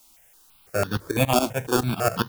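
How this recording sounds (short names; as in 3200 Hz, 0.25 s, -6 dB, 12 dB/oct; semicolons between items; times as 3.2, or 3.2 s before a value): aliases and images of a low sample rate 2000 Hz, jitter 0%; tremolo saw up 7.2 Hz, depth 85%; a quantiser's noise floor 10-bit, dither triangular; notches that jump at a steady rate 6 Hz 470–2300 Hz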